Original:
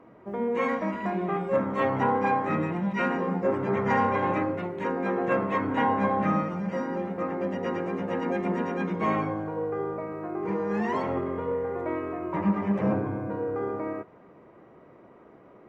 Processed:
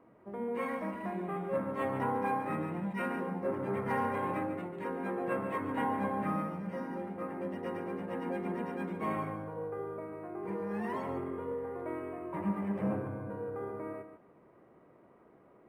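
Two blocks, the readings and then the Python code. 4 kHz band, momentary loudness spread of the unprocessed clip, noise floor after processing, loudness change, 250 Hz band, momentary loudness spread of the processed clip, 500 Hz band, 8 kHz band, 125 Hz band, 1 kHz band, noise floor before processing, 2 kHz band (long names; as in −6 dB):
−10.0 dB, 7 LU, −61 dBFS, −8.0 dB, −8.0 dB, 7 LU, −8.0 dB, can't be measured, −8.0 dB, −8.5 dB, −53 dBFS, −9.0 dB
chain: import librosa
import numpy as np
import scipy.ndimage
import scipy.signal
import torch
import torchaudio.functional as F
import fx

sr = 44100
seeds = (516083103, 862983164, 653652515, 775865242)

y = x + 10.0 ** (-10.0 / 20.0) * np.pad(x, (int(144 * sr / 1000.0), 0))[:len(x)]
y = np.interp(np.arange(len(y)), np.arange(len(y))[::4], y[::4])
y = F.gain(torch.from_numpy(y), -8.5).numpy()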